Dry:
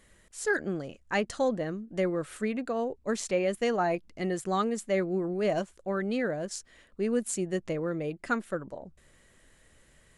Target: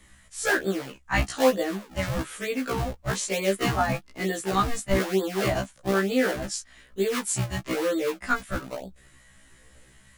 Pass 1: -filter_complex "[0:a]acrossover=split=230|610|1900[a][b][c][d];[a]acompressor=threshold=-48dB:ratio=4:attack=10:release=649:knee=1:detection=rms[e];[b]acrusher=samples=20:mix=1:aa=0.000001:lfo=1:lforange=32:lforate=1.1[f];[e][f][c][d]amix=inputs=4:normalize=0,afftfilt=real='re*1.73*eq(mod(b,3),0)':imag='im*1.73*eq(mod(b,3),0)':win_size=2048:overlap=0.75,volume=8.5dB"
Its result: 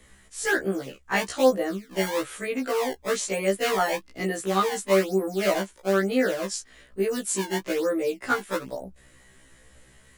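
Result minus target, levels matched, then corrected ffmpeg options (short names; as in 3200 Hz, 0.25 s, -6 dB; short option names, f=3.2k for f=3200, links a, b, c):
decimation with a swept rate: distortion -9 dB
-filter_complex "[0:a]acrossover=split=230|610|1900[a][b][c][d];[a]acompressor=threshold=-48dB:ratio=4:attack=10:release=649:knee=1:detection=rms[e];[b]acrusher=samples=54:mix=1:aa=0.000001:lfo=1:lforange=86.4:lforate=1.1[f];[e][f][c][d]amix=inputs=4:normalize=0,afftfilt=real='re*1.73*eq(mod(b,3),0)':imag='im*1.73*eq(mod(b,3),0)':win_size=2048:overlap=0.75,volume=8.5dB"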